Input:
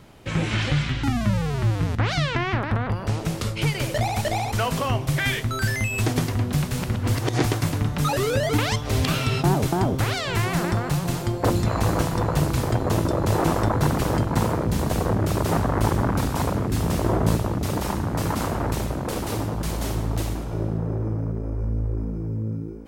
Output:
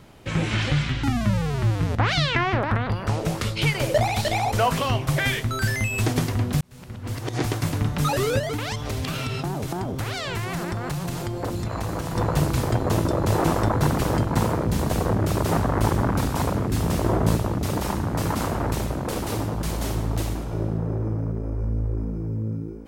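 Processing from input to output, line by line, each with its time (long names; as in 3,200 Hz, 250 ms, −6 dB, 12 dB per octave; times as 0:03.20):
0:01.90–0:05.28: auto-filter bell 1.5 Hz 500–4,300 Hz +8 dB
0:06.61–0:07.83: fade in
0:08.39–0:12.16: downward compressor 5 to 1, threshold −24 dBFS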